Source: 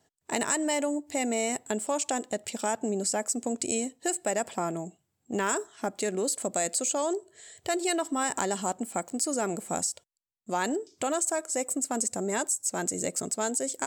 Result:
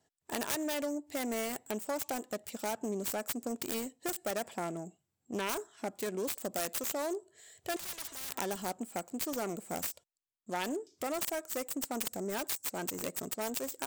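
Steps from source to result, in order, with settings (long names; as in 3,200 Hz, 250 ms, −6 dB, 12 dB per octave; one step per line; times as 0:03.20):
phase distortion by the signal itself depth 0.34 ms
0:07.76–0:08.35: every bin compressed towards the loudest bin 10 to 1
level −6 dB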